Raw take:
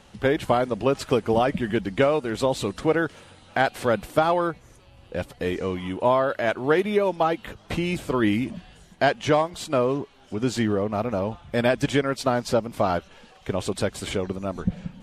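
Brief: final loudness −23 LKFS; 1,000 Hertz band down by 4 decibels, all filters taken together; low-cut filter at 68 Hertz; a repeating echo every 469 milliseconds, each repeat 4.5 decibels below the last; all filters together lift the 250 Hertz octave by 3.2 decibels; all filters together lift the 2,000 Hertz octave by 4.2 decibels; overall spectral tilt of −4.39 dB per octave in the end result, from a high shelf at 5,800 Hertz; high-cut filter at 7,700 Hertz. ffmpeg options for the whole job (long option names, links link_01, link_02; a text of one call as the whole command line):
ffmpeg -i in.wav -af "highpass=68,lowpass=7700,equalizer=frequency=250:width_type=o:gain=4.5,equalizer=frequency=1000:width_type=o:gain=-8.5,equalizer=frequency=2000:width_type=o:gain=8,highshelf=frequency=5800:gain=5.5,aecho=1:1:469|938|1407|1876|2345|2814|3283|3752|4221:0.596|0.357|0.214|0.129|0.0772|0.0463|0.0278|0.0167|0.01,volume=-1dB" out.wav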